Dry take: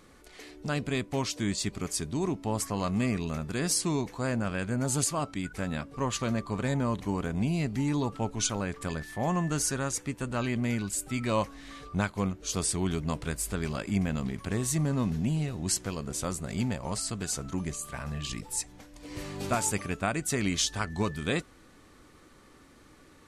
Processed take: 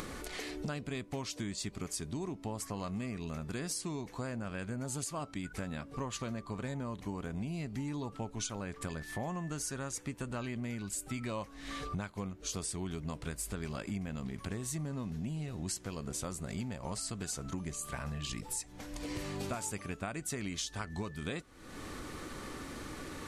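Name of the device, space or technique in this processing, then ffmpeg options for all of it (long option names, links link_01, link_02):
upward and downward compression: -af "acompressor=mode=upward:threshold=-42dB:ratio=2.5,acompressor=threshold=-43dB:ratio=6,volume=6.5dB"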